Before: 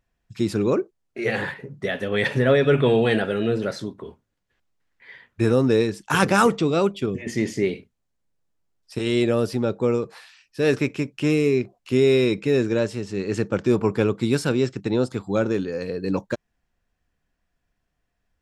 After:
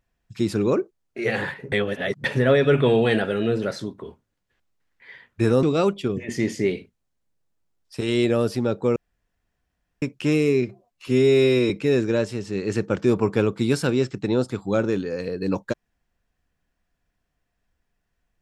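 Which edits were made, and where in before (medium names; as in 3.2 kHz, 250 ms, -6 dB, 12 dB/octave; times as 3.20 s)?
1.72–2.24 s: reverse
5.63–6.61 s: delete
9.94–11.00 s: room tone
11.60–12.32 s: stretch 1.5×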